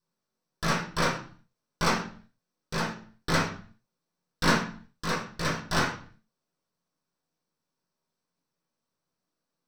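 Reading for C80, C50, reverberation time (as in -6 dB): 11.5 dB, 7.0 dB, 0.45 s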